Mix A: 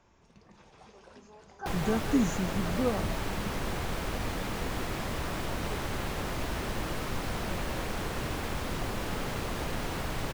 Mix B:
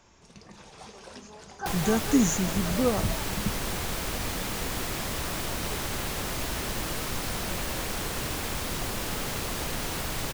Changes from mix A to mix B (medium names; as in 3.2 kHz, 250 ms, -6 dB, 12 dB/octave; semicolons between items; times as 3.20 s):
speech +4.0 dB; first sound +7.5 dB; master: add treble shelf 3.7 kHz +12 dB